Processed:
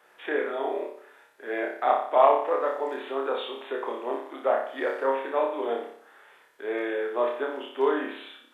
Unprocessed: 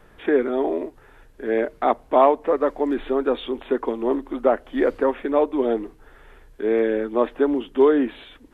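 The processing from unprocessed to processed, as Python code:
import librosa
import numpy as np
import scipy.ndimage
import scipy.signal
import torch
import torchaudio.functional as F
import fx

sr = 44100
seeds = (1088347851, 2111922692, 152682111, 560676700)

p1 = scipy.signal.sosfilt(scipy.signal.butter(2, 630.0, 'highpass', fs=sr, output='sos'), x)
p2 = p1 + fx.room_flutter(p1, sr, wall_m=5.1, rt60_s=0.58, dry=0)
y = F.gain(torch.from_numpy(p2), -3.5).numpy()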